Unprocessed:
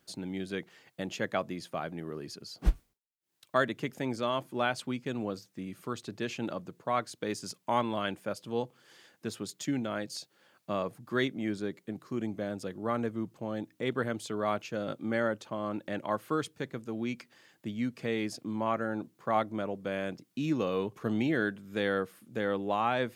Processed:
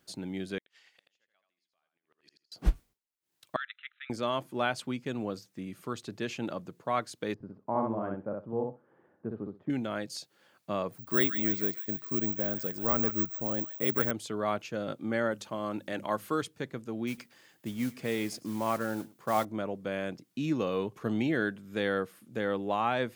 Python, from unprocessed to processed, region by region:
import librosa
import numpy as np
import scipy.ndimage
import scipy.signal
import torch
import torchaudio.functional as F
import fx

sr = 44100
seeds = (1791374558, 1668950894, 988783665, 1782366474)

y = fx.chain(x, sr, fx.bandpass_q(hz=3900.0, q=0.69),
    fx.gate_flip(shuts_db=-43.0, range_db=-37),
    fx.echo_feedback(ms=82, feedback_pct=17, wet_db=-5.5), at=(0.58, 2.52))
y = fx.chain(y, sr, fx.level_steps(step_db=11),
    fx.brickwall_bandpass(low_hz=1200.0, high_hz=4100.0), at=(3.56, 4.1))
y = fx.chain(y, sr, fx.bessel_lowpass(hz=820.0, order=4),
    fx.echo_feedback(ms=62, feedback_pct=16, wet_db=-3.0), at=(7.34, 9.7))
y = fx.chain(y, sr, fx.resample_bad(factor=2, down='filtered', up='zero_stuff'),
    fx.echo_wet_highpass(ms=147, feedback_pct=41, hz=1400.0, wet_db=-8), at=(10.92, 14.11))
y = fx.chain(y, sr, fx.high_shelf(hz=3700.0, db=7.5),
    fx.hum_notches(base_hz=50, count=5), at=(15.31, 16.42))
y = fx.chain(y, sr, fx.high_shelf(hz=11000.0, db=9.0),
    fx.mod_noise(seeds[0], snr_db=18),
    fx.echo_single(ms=108, db=-21.0), at=(17.07, 19.45))